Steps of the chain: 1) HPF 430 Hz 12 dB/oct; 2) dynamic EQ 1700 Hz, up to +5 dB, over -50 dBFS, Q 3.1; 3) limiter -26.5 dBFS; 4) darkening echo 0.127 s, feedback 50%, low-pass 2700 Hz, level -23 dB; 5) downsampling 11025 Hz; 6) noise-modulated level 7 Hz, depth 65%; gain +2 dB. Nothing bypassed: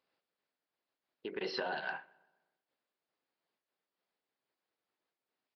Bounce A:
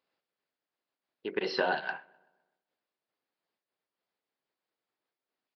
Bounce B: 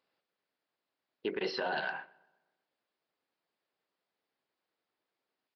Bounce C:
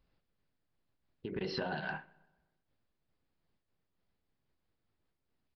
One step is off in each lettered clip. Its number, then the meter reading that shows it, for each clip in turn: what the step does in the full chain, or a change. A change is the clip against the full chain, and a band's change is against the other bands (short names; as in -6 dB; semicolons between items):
3, mean gain reduction 4.0 dB; 6, crest factor change -3.0 dB; 1, 125 Hz band +15.5 dB